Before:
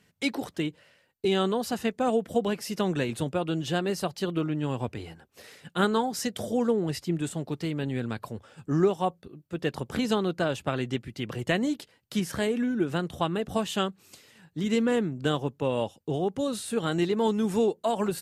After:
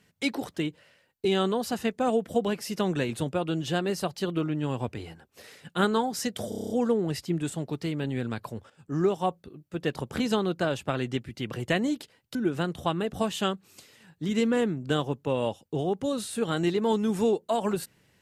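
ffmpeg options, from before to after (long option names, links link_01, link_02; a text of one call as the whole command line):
ffmpeg -i in.wav -filter_complex "[0:a]asplit=10[link_01][link_02][link_03][link_04][link_05][link_06][link_07][link_08][link_09][link_10];[link_01]atrim=end=6.522[link_11];[link_02]atrim=start=6.488:end=6.522[link_12];[link_03]atrim=start=6.488:end=6.522[link_13];[link_04]atrim=start=6.488:end=6.522[link_14];[link_05]atrim=start=6.488:end=6.522[link_15];[link_06]atrim=start=6.488:end=6.522[link_16];[link_07]atrim=start=6.488:end=6.522[link_17];[link_08]atrim=start=6.488:end=8.49,asetpts=PTS-STARTPTS,afade=type=out:start_time=1.998:duration=0.004:curve=hsin:silence=0.251189[link_18];[link_09]atrim=start=8.49:end=12.142,asetpts=PTS-STARTPTS,afade=type=in:duration=0.47:silence=0.251189[link_19];[link_10]atrim=start=12.698[link_20];[link_11][link_12]acrossfade=duration=0.004:curve1=hsin:curve2=hsin[link_21];[link_21][link_13]acrossfade=duration=0.004:curve1=hsin:curve2=hsin[link_22];[link_22][link_14]acrossfade=duration=0.004:curve1=hsin:curve2=hsin[link_23];[link_23][link_15]acrossfade=duration=0.004:curve1=hsin:curve2=hsin[link_24];[link_24][link_16]acrossfade=duration=0.004:curve1=hsin:curve2=hsin[link_25];[link_25][link_17]acrossfade=duration=0.004:curve1=hsin:curve2=hsin[link_26];[link_18][link_19]concat=n=2:v=0:a=1[link_27];[link_26][link_27]acrossfade=duration=0.004:curve1=hsin:curve2=hsin[link_28];[link_28][link_20]acrossfade=duration=0.004:curve1=hsin:curve2=hsin" out.wav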